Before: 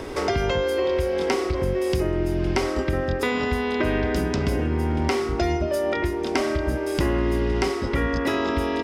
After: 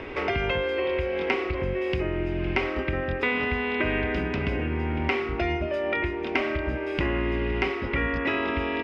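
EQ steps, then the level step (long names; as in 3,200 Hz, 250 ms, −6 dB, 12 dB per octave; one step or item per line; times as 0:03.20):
low-pass with resonance 2,500 Hz, resonance Q 3.3
−4.5 dB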